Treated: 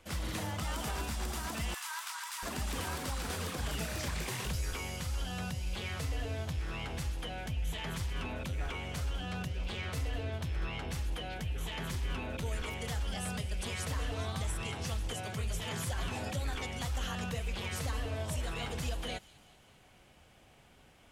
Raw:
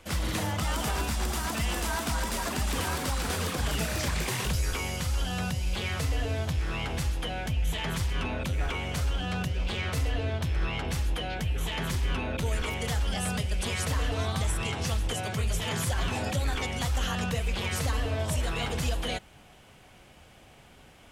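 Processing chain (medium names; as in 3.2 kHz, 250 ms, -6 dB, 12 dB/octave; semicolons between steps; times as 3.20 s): 1.74–2.43 s: steep high-pass 910 Hz 48 dB/octave; feedback echo behind a high-pass 197 ms, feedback 58%, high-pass 3.4 kHz, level -17 dB; trim -7 dB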